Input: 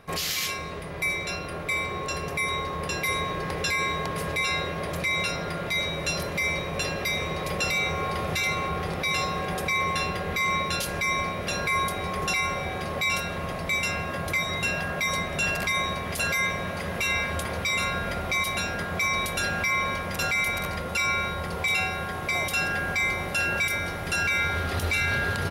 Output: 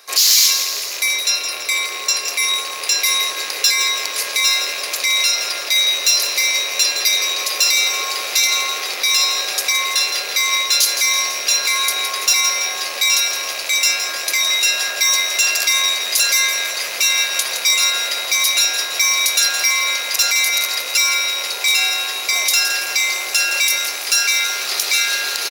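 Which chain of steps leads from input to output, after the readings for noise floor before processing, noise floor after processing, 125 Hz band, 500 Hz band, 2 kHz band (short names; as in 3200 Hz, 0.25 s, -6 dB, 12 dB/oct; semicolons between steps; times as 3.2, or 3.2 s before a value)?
-33 dBFS, -26 dBFS, under -25 dB, -2.0 dB, +7.0 dB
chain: rattling part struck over -35 dBFS, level -26 dBFS; band shelf 5200 Hz +8.5 dB 1 oct; echo 0.496 s -20 dB; in parallel at -2 dB: limiter -18 dBFS, peak gain reduction 8 dB; on the sum: hard clip -14.5 dBFS, distortion -22 dB; HPF 310 Hz 24 dB/oct; tilt +4.5 dB/oct; lo-fi delay 0.166 s, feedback 55%, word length 6-bit, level -8 dB; gain -3 dB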